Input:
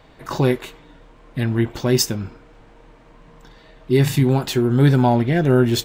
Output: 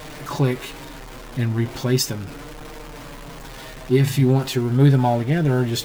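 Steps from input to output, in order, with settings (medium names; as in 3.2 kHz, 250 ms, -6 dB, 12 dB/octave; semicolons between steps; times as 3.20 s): jump at every zero crossing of -28 dBFS; flange 0.37 Hz, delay 6.5 ms, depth 1.5 ms, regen +39%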